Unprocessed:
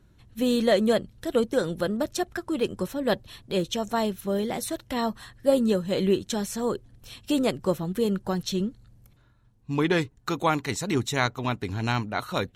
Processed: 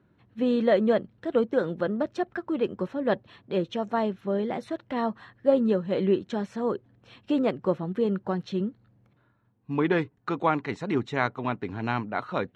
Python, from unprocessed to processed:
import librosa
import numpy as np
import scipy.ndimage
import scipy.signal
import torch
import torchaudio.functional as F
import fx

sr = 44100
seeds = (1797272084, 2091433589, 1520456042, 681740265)

y = fx.bandpass_edges(x, sr, low_hz=150.0, high_hz=2100.0)